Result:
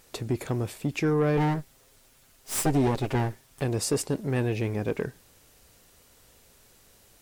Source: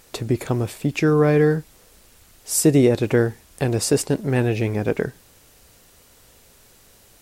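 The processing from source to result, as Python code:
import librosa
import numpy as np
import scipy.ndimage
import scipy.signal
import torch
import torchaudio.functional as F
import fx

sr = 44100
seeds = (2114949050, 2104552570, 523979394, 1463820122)

y = fx.lower_of_two(x, sr, delay_ms=7.5, at=(1.37, 3.62))
y = 10.0 ** (-11.5 / 20.0) * np.tanh(y / 10.0 ** (-11.5 / 20.0))
y = y * librosa.db_to_amplitude(-5.5)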